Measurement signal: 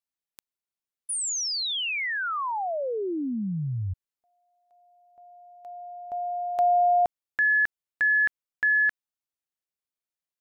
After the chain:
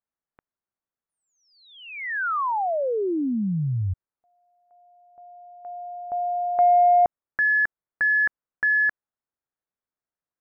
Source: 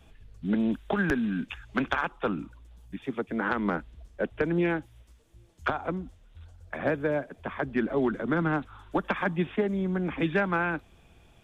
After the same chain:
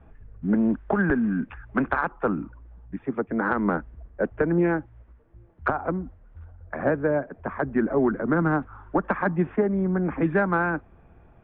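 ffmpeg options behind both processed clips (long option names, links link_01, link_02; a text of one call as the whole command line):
ffmpeg -i in.wav -af "lowpass=frequency=1700:width=0.5412,lowpass=frequency=1700:width=1.3066,acontrast=82,volume=-2.5dB" out.wav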